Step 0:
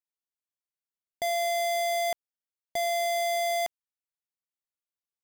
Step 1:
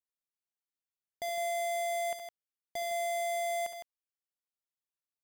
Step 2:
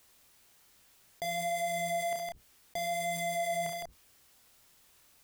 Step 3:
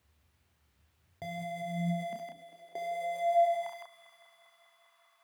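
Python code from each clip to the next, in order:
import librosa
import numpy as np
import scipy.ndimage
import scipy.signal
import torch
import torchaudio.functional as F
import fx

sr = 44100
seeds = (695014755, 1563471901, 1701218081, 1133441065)

y1 = fx.echo_multitap(x, sr, ms=(61, 69, 160), db=(-13.0, -11.0, -8.5))
y1 = F.gain(torch.from_numpy(y1), -7.5).numpy()
y2 = fx.octave_divider(y1, sr, octaves=2, level_db=-1.0)
y2 = fx.chorus_voices(y2, sr, voices=2, hz=0.63, base_ms=28, depth_ms=4.2, mix_pct=35)
y2 = fx.env_flatten(y2, sr, amount_pct=50)
y2 = F.gain(torch.from_numpy(y2), 1.5).numpy()
y3 = fx.bass_treble(y2, sr, bass_db=8, treble_db=-11)
y3 = fx.echo_heads(y3, sr, ms=200, heads='first and second', feedback_pct=70, wet_db=-17)
y3 = fx.filter_sweep_highpass(y3, sr, from_hz=77.0, to_hz=1100.0, start_s=1.02, end_s=3.9, q=6.2)
y3 = F.gain(torch.from_numpy(y3), -6.5).numpy()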